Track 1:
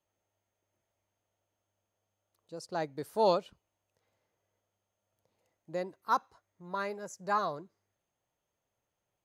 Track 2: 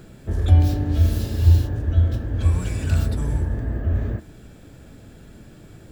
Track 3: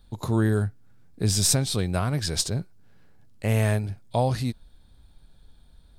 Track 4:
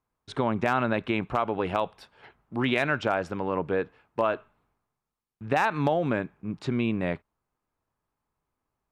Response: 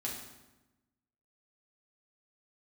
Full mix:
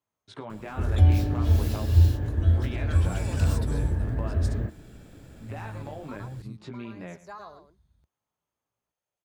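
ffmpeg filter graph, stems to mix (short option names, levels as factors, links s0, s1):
-filter_complex "[0:a]lowshelf=f=330:g=-7,acompressor=threshold=0.02:ratio=4,volume=0.501,asplit=2[s0][s1];[s1]volume=0.376[s2];[1:a]adelay=500,volume=0.668[s3];[2:a]asubboost=boost=7.5:cutoff=170,adelay=2050,volume=0.112[s4];[3:a]flanger=delay=17:depth=2.7:speed=0.57,volume=0.631,asplit=3[s5][s6][s7];[s6]volume=0.0794[s8];[s7]apad=whole_len=407726[s9];[s0][s9]sidechaincompress=threshold=0.0112:ratio=8:attack=47:release=134[s10];[s4][s5]amix=inputs=2:normalize=0,highpass=f=65:w=0.5412,highpass=f=65:w=1.3066,acompressor=threshold=0.0158:ratio=4,volume=1[s11];[s2][s8]amix=inputs=2:normalize=0,aecho=0:1:111:1[s12];[s10][s3][s11][s12]amix=inputs=4:normalize=0"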